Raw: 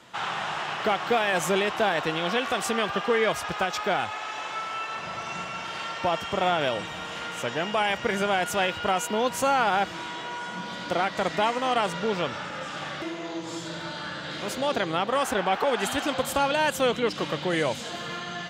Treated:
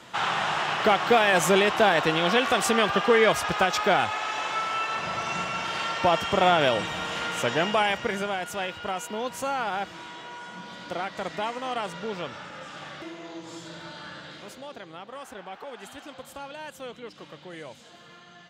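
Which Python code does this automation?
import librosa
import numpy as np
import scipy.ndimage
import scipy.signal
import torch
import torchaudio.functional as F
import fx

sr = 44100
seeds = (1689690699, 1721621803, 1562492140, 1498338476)

y = fx.gain(x, sr, db=fx.line((7.63, 4.0), (8.4, -6.0), (14.19, -6.0), (14.72, -15.5)))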